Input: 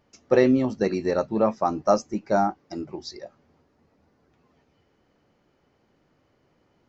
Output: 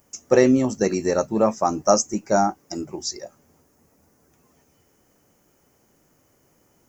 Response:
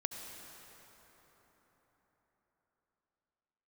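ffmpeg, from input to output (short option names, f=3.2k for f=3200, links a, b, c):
-af "aexciter=amount=14.7:drive=3.6:freq=6.2k,volume=2.5dB"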